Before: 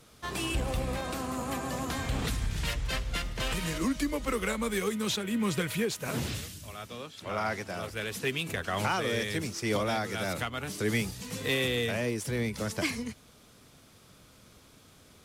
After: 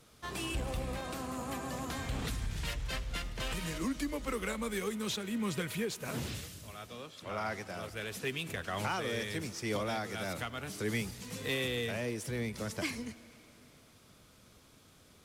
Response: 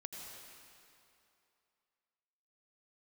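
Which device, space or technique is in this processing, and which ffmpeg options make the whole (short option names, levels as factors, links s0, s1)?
saturated reverb return: -filter_complex "[0:a]asplit=2[s0][s1];[1:a]atrim=start_sample=2205[s2];[s1][s2]afir=irnorm=-1:irlink=0,asoftclip=type=tanh:threshold=0.0106,volume=0.473[s3];[s0][s3]amix=inputs=2:normalize=0,volume=0.501"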